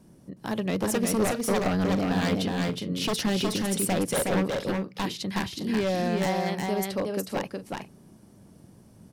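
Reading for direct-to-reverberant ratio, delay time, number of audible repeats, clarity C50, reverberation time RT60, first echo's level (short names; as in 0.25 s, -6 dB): none, 0.366 s, 2, none, none, -3.0 dB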